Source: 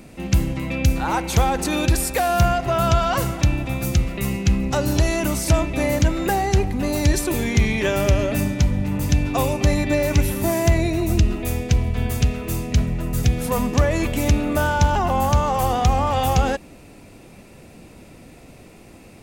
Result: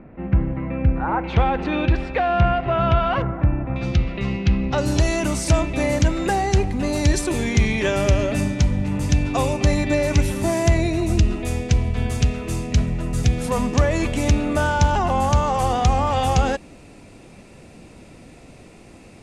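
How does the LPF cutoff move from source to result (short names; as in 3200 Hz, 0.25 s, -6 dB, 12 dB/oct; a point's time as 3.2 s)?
LPF 24 dB/oct
1800 Hz
from 1.24 s 3100 Hz
from 3.22 s 1700 Hz
from 3.76 s 4400 Hz
from 4.78 s 9700 Hz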